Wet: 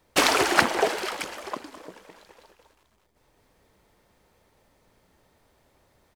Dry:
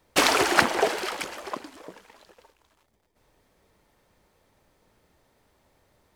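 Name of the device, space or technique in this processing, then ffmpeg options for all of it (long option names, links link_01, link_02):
ducked delay: -filter_complex "[0:a]asplit=3[link_01][link_02][link_03];[link_02]adelay=209,volume=-4dB[link_04];[link_03]apad=whole_len=280501[link_05];[link_04][link_05]sidechaincompress=threshold=-40dB:ratio=8:attack=16:release=766[link_06];[link_01][link_06]amix=inputs=2:normalize=0"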